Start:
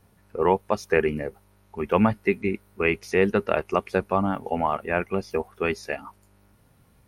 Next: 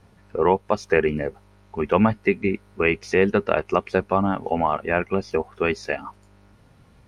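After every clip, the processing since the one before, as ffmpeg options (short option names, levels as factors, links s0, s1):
-filter_complex "[0:a]lowpass=6500,asplit=2[s0][s1];[s1]acompressor=threshold=0.0398:ratio=6,volume=0.944[s2];[s0][s2]amix=inputs=2:normalize=0"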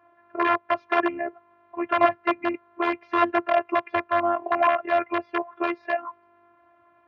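-af "aeval=exprs='(mod(3.55*val(0)+1,2)-1)/3.55':c=same,afftfilt=real='hypot(re,im)*cos(PI*b)':imag='0':win_size=512:overlap=0.75,highpass=f=110:w=0.5412,highpass=f=110:w=1.3066,equalizer=f=160:t=q:w=4:g=-8,equalizer=f=240:t=q:w=4:g=-8,equalizer=f=440:t=q:w=4:g=-5,equalizer=f=660:t=q:w=4:g=9,equalizer=f=1100:t=q:w=4:g=9,equalizer=f=1600:t=q:w=4:g=3,lowpass=f=2500:w=0.5412,lowpass=f=2500:w=1.3066"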